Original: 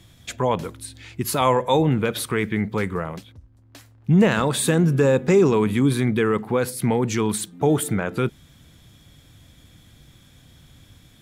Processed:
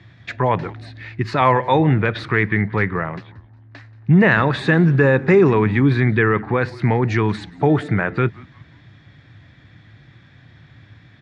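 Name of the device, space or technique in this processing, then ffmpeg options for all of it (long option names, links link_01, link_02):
frequency-shifting delay pedal into a guitar cabinet: -filter_complex "[0:a]asplit=4[link_01][link_02][link_03][link_04];[link_02]adelay=180,afreqshift=-140,volume=-22dB[link_05];[link_03]adelay=360,afreqshift=-280,volume=-29.5dB[link_06];[link_04]adelay=540,afreqshift=-420,volume=-37.1dB[link_07];[link_01][link_05][link_06][link_07]amix=inputs=4:normalize=0,highpass=100,equalizer=frequency=110:width_type=q:width=4:gain=7,equalizer=frequency=230:width_type=q:width=4:gain=-5,equalizer=frequency=490:width_type=q:width=4:gain=-5,equalizer=frequency=1800:width_type=q:width=4:gain=9,equalizer=frequency=3200:width_type=q:width=4:gain=-9,lowpass=frequency=3900:width=0.5412,lowpass=frequency=3900:width=1.3066,volume=4.5dB"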